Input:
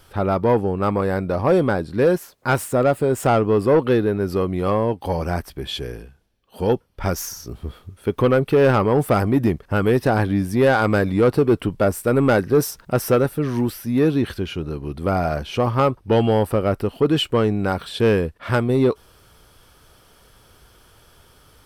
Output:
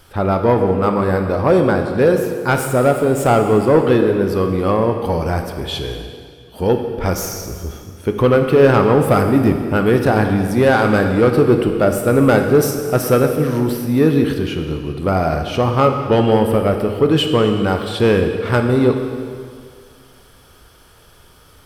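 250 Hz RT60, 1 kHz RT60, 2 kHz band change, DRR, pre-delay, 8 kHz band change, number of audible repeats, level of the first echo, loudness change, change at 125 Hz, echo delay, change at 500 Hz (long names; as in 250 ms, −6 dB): 2.0 s, 2.1 s, +4.0 dB, 4.5 dB, 7 ms, +4.0 dB, no echo audible, no echo audible, +4.0 dB, +4.0 dB, no echo audible, +4.5 dB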